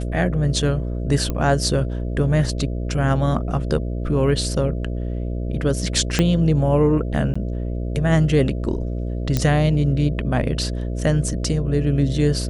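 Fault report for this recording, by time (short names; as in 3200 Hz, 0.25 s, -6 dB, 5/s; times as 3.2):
buzz 60 Hz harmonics 11 -25 dBFS
1.3 pop -12 dBFS
6.19 pop -4 dBFS
7.34–7.36 gap 15 ms
9.37 pop -6 dBFS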